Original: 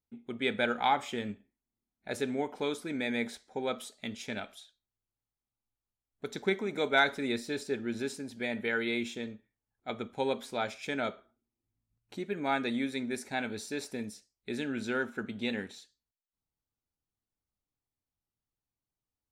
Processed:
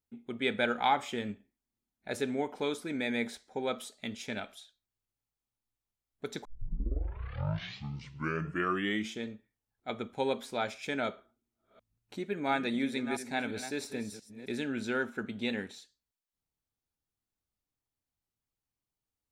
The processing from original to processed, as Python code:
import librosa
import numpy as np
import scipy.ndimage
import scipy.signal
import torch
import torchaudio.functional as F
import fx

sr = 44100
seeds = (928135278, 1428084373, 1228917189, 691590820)

y = fx.reverse_delay(x, sr, ms=343, wet_db=-10.0, at=(11.11, 14.52))
y = fx.edit(y, sr, fx.tape_start(start_s=6.45, length_s=2.81), tone=tone)